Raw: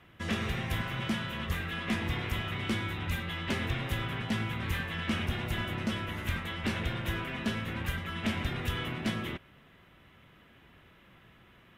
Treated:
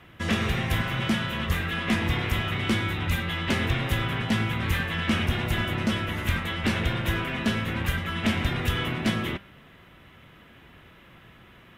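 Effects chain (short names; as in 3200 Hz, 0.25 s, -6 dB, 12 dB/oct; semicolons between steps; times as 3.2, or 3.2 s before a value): de-hum 198.9 Hz, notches 31; gain +7 dB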